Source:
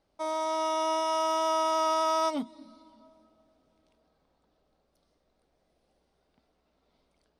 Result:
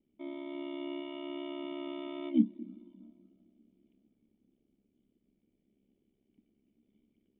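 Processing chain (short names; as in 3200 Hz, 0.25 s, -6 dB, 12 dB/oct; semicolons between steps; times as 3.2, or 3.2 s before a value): vocal tract filter i; ring modulator 34 Hz; small resonant body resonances 210/390/1900 Hz, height 7 dB; gain +8.5 dB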